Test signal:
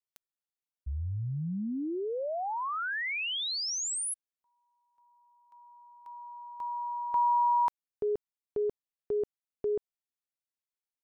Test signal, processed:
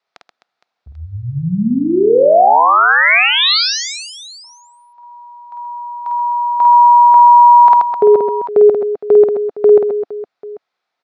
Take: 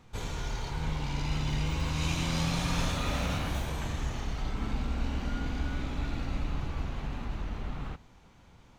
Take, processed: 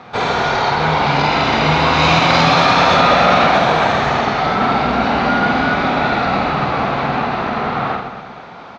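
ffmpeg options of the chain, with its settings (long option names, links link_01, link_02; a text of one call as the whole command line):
ffmpeg -i in.wav -filter_complex "[0:a]highpass=250,equalizer=frequency=300:width_type=q:width=4:gain=-6,equalizer=frequency=720:width_type=q:width=4:gain=8,equalizer=frequency=1300:width_type=q:width=4:gain=5,equalizer=frequency=3000:width_type=q:width=4:gain=-6,lowpass=frequency=4300:width=0.5412,lowpass=frequency=4300:width=1.3066,asplit=2[link_01][link_02];[link_02]aecho=0:1:50|130|258|462.8|790.5:0.631|0.398|0.251|0.158|0.1[link_03];[link_01][link_03]amix=inputs=2:normalize=0,alimiter=level_in=23dB:limit=-1dB:release=50:level=0:latency=1,volume=-1dB" out.wav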